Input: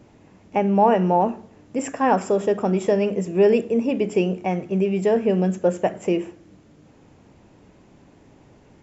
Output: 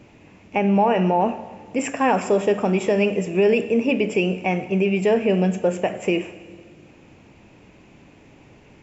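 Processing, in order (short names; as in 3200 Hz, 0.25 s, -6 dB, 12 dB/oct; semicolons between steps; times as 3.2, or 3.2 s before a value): bell 2500 Hz +10.5 dB 0.56 oct; limiter -11.5 dBFS, peak gain reduction 6 dB; plate-style reverb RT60 1.9 s, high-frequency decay 0.95×, pre-delay 0 ms, DRR 13 dB; gain +1.5 dB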